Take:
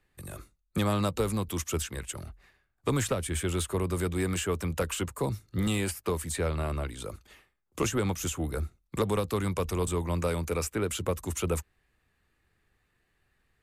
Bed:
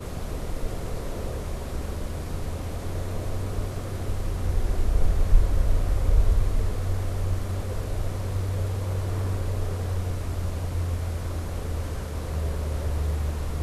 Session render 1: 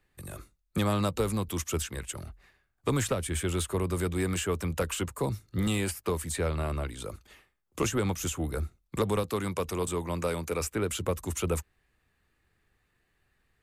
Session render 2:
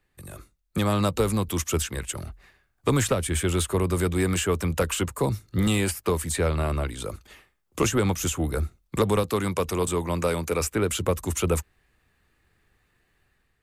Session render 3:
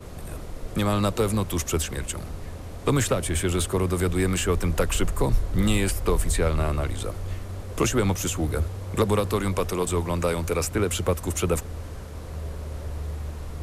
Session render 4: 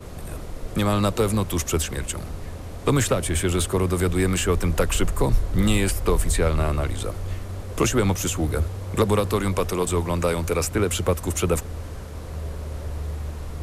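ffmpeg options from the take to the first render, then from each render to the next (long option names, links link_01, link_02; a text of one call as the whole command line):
ffmpeg -i in.wav -filter_complex "[0:a]asettb=1/sr,asplit=3[link_01][link_02][link_03];[link_01]atrim=end=9.234[link_04];[link_02]atrim=start=9.23:end=10.61,asetpts=PTS-STARTPTS,afade=type=in:duration=0.004:curve=qsin,afade=type=out:start_time=1.376:duration=0.004:curve=qsin,highpass=frequency=150:poles=1[link_05];[link_03]atrim=start=10.606[link_06];[link_04][link_05]acrossfade=duration=0.004:curve1=hsin:curve2=qsin[link_07];[link_07][link_06]acrossfade=duration=0.004:curve1=qsin:curve2=hsin" out.wav
ffmpeg -i in.wav -af "dynaudnorm=framelen=550:gausssize=3:maxgain=5.5dB" out.wav
ffmpeg -i in.wav -i bed.wav -filter_complex "[1:a]volume=-5.5dB[link_01];[0:a][link_01]amix=inputs=2:normalize=0" out.wav
ffmpeg -i in.wav -af "volume=2dB" out.wav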